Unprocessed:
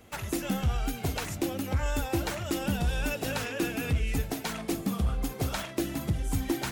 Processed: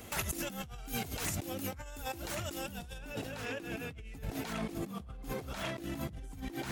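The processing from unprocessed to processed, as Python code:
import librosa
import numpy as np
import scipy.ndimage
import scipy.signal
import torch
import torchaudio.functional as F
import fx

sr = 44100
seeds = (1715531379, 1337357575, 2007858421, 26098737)

y = fx.over_compress(x, sr, threshold_db=-39.0, ratio=-1.0)
y = fx.high_shelf(y, sr, hz=4600.0, db=fx.steps((0.0, 7.5), (2.97, -4.5)))
y = y * librosa.db_to_amplitude(-2.5)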